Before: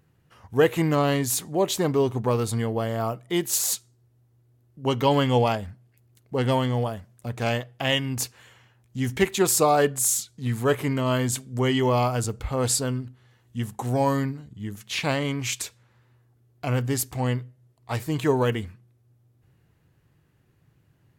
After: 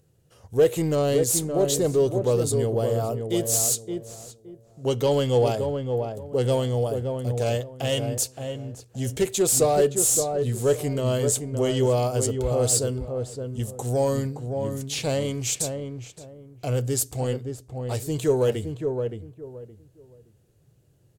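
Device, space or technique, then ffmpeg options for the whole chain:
saturation between pre-emphasis and de-emphasis: -filter_complex "[0:a]highshelf=frequency=3900:gain=11,asoftclip=type=tanh:threshold=-15dB,equalizer=frequency=250:width_type=o:width=1:gain=-6,equalizer=frequency=500:width_type=o:width=1:gain=7,equalizer=frequency=1000:width_type=o:width=1:gain=-9,equalizer=frequency=2000:width_type=o:width=1:gain=-9,equalizer=frequency=8000:width_type=o:width=1:gain=7,highshelf=frequency=3900:gain=-11,asplit=2[link_01][link_02];[link_02]adelay=569,lowpass=frequency=1100:poles=1,volume=-5dB,asplit=2[link_03][link_04];[link_04]adelay=569,lowpass=frequency=1100:poles=1,volume=0.25,asplit=2[link_05][link_06];[link_06]adelay=569,lowpass=frequency=1100:poles=1,volume=0.25[link_07];[link_01][link_03][link_05][link_07]amix=inputs=4:normalize=0,volume=1.5dB"

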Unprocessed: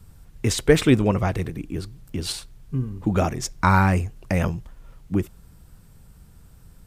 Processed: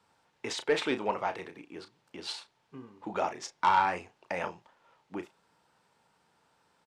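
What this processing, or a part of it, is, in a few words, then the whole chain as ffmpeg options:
intercom: -filter_complex "[0:a]highpass=490,lowpass=4600,equalizer=frequency=890:width_type=o:width=0.23:gain=9,asoftclip=type=tanh:threshold=-11.5dB,asplit=2[link_01][link_02];[link_02]adelay=34,volume=-10dB[link_03];[link_01][link_03]amix=inputs=2:normalize=0,volume=-5.5dB"

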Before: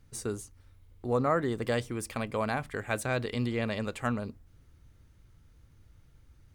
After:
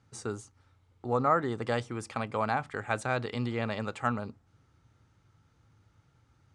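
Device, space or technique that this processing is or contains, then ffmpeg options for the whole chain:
car door speaker: -af "highpass=110,equalizer=frequency=110:width_type=q:width=4:gain=5,equalizer=frequency=830:width_type=q:width=4:gain=8,equalizer=frequency=1300:width_type=q:width=4:gain=7,lowpass=frequency=8200:width=0.5412,lowpass=frequency=8200:width=1.3066,volume=-2dB"

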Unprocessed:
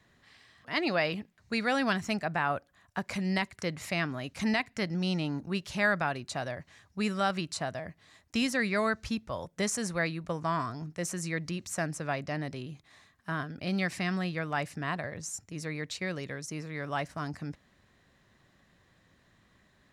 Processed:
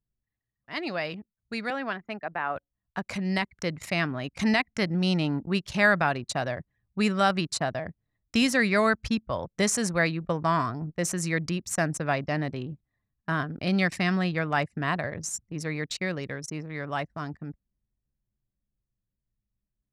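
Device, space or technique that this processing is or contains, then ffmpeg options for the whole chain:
voice memo with heavy noise removal: -filter_complex "[0:a]asettb=1/sr,asplit=3[link_01][link_02][link_03];[link_01]atrim=end=1.704[link_04];[link_02]atrim=start=1.7:end=2.56,asetpts=PTS-STARTPTS,afade=type=in:duration=0.004:curve=qsin,afade=type=out:start_time=0.856:duration=0.004:curve=qsin,acrossover=split=250 3100:gain=0.224 1 0.141[link_05][link_06][link_07];[link_05][link_06][link_07]amix=inputs=3:normalize=0[link_08];[link_03]atrim=start=2.556[link_09];[link_04][link_08]acrossfade=duration=0.004:curve1=hsin:curve2=qsin[link_10];[link_10][link_09]acrossfade=duration=0.004:curve1=qsin:curve2=hsin,anlmdn=0.251,dynaudnorm=framelen=220:gausssize=31:maxgain=9dB,volume=-3dB"

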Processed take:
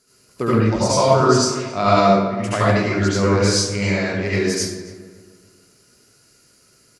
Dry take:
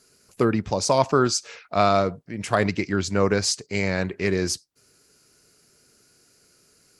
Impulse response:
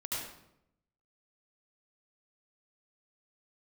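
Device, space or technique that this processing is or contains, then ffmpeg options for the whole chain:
bathroom: -filter_complex "[1:a]atrim=start_sample=2205[link_01];[0:a][link_01]afir=irnorm=-1:irlink=0,asettb=1/sr,asplit=3[link_02][link_03][link_04];[link_02]atrim=end=1.954[link_05];[link_03]atrim=start=1.95:end=2.4,asetpts=PTS-STARTPTS,afade=type=in:duration=0.004:curve=qsin,afade=type=out:start_time=0.446:duration=0.004:curve=qsin,asplit=2[link_06][link_07];[link_07]adelay=16,volume=-3dB[link_08];[link_06][link_08]amix=inputs=2:normalize=0,atrim=end_sample=19845[link_09];[link_04]atrim=start=2.396[link_10];[link_05][link_09]acrossfade=duration=0.004:curve1=hsin:curve2=qsin[link_11];[link_11][link_10]acrossfade=duration=0.004:curve1=qsin:curve2=hsin,asplit=2[link_12][link_13];[link_13]adelay=275,lowpass=frequency=1900:poles=1,volume=-13dB,asplit=2[link_14][link_15];[link_15]adelay=275,lowpass=frequency=1900:poles=1,volume=0.4,asplit=2[link_16][link_17];[link_17]adelay=275,lowpass=frequency=1900:poles=1,volume=0.4,asplit=2[link_18][link_19];[link_19]adelay=275,lowpass=frequency=1900:poles=1,volume=0.4[link_20];[link_12][link_14][link_16][link_18][link_20]amix=inputs=5:normalize=0,volume=2dB"

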